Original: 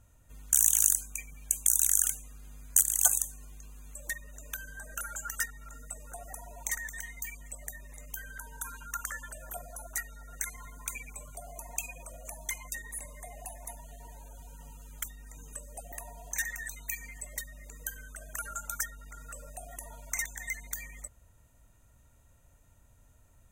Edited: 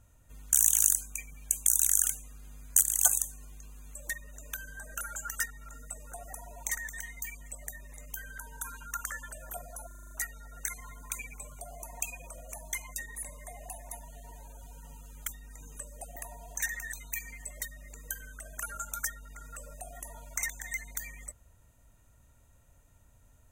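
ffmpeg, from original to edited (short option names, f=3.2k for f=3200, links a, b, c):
-filter_complex "[0:a]asplit=7[a][b][c][d][e][f][g];[a]atrim=end=9.912[h];[b]atrim=start=9.868:end=9.912[i];[c]atrim=start=9.868:end=9.912[j];[d]atrim=start=9.868:end=9.912[k];[e]atrim=start=9.868:end=9.912[l];[f]atrim=start=9.868:end=9.912[m];[g]atrim=start=9.868[n];[h][i]acrossfade=d=0.004:c1=hsin:c2=hsin[o];[o][j]acrossfade=d=0.004:c1=hsin:c2=hsin[p];[p][k]acrossfade=d=0.004:c1=hsin:c2=hsin[q];[q][l]acrossfade=d=0.004:c1=hsin:c2=hsin[r];[r][m]acrossfade=d=0.004:c1=hsin:c2=hsin[s];[s][n]acrossfade=d=0.004:c1=hsin:c2=hsin"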